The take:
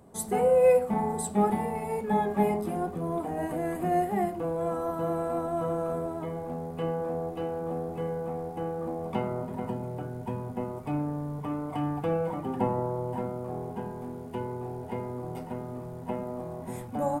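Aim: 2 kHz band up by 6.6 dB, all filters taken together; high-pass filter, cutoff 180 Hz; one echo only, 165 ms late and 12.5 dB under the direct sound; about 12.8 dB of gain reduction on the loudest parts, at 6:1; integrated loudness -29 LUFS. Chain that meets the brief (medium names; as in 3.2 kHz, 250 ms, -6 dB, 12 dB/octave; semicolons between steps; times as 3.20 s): high-pass 180 Hz; peaking EQ 2 kHz +8 dB; compression 6:1, threshold -31 dBFS; delay 165 ms -12.5 dB; trim +6.5 dB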